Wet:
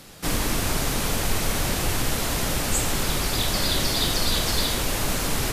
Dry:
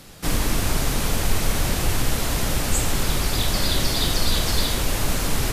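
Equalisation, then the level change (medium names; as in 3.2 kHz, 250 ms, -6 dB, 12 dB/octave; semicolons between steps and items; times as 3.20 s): bass shelf 120 Hz -5.5 dB; 0.0 dB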